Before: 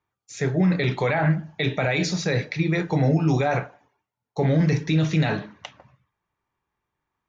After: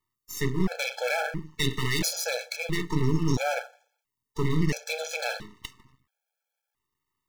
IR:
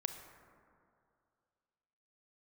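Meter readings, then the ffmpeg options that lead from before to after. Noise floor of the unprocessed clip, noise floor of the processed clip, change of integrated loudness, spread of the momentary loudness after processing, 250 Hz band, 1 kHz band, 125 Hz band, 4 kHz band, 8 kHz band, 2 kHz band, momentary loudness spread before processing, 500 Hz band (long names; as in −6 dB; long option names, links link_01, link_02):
−85 dBFS, below −85 dBFS, −6.0 dB, 13 LU, −7.5 dB, −5.5 dB, −8.5 dB, +1.0 dB, can't be measured, −3.0 dB, 8 LU, −6.0 dB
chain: -af "aeval=exprs='max(val(0),0)':channel_layout=same,crystalizer=i=3:c=0,afftfilt=real='re*gt(sin(2*PI*0.74*pts/sr)*(1-2*mod(floor(b*sr/1024/440),2)),0)':imag='im*gt(sin(2*PI*0.74*pts/sr)*(1-2*mod(floor(b*sr/1024/440),2)),0)':win_size=1024:overlap=0.75"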